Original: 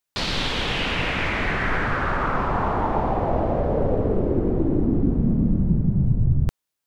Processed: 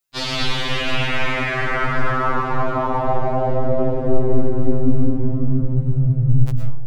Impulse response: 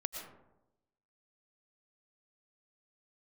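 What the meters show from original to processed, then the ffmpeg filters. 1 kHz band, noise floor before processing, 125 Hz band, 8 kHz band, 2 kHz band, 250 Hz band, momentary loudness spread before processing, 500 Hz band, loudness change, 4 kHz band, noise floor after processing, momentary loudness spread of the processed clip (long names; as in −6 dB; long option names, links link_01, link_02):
+2.5 dB, −82 dBFS, +3.5 dB, can't be measured, +2.0 dB, 0.0 dB, 2 LU, +3.0 dB, +2.0 dB, +2.5 dB, −24 dBFS, 3 LU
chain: -filter_complex "[0:a]highshelf=frequency=5400:gain=4[link_01];[1:a]atrim=start_sample=2205[link_02];[link_01][link_02]afir=irnorm=-1:irlink=0,afftfilt=real='re*2.45*eq(mod(b,6),0)':imag='im*2.45*eq(mod(b,6),0)':win_size=2048:overlap=0.75,volume=3.5dB"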